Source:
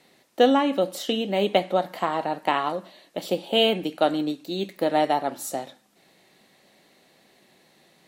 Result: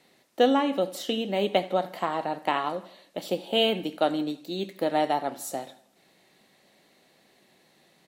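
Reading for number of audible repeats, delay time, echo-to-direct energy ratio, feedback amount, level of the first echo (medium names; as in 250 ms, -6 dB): 3, 81 ms, -19.0 dB, 50%, -20.0 dB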